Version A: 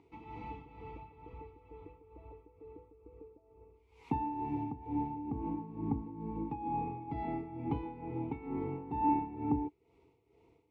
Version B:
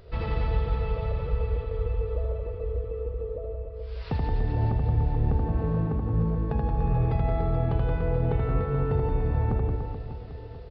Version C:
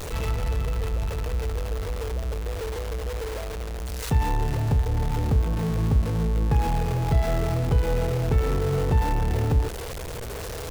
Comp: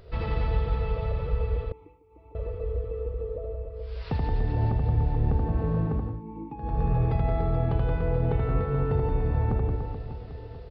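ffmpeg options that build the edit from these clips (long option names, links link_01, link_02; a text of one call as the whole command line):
ffmpeg -i take0.wav -i take1.wav -filter_complex "[0:a]asplit=2[link_01][link_02];[1:a]asplit=3[link_03][link_04][link_05];[link_03]atrim=end=1.722[link_06];[link_01]atrim=start=1.718:end=2.352[link_07];[link_04]atrim=start=2.348:end=6.23[link_08];[link_02]atrim=start=5.99:end=6.78[link_09];[link_05]atrim=start=6.54[link_10];[link_06][link_07]acrossfade=duration=0.004:curve1=hsin:curve2=hsin[link_11];[link_11][link_08]acrossfade=duration=0.004:curve1=hsin:curve2=hsin[link_12];[link_12][link_09]acrossfade=duration=0.24:curve1=tri:curve2=tri[link_13];[link_13][link_10]acrossfade=duration=0.24:curve1=tri:curve2=tri" out.wav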